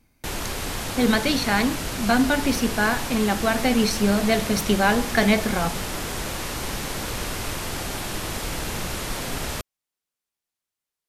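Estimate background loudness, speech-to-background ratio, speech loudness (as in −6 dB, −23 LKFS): −29.0 LKFS, 6.5 dB, −22.5 LKFS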